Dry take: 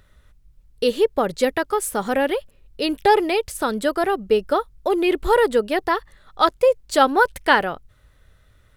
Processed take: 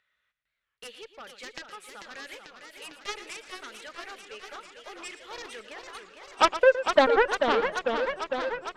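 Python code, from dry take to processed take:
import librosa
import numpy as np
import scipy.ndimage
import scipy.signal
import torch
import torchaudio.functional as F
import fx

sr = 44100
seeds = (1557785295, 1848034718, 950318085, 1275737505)

p1 = fx.filter_sweep_bandpass(x, sr, from_hz=2300.0, to_hz=440.0, start_s=5.47, end_s=7.16, q=1.7)
p2 = fx.over_compress(p1, sr, threshold_db=-33.0, ratio=-1.0, at=(5.42, 5.95))
p3 = fx.cheby_harmonics(p2, sr, harmonics=(7,), levels_db=(-14,), full_scale_db=-7.0)
p4 = p3 + fx.echo_single(p3, sr, ms=115, db=-13.5, dry=0)
y = fx.echo_warbled(p4, sr, ms=447, feedback_pct=75, rate_hz=2.8, cents=206, wet_db=-7)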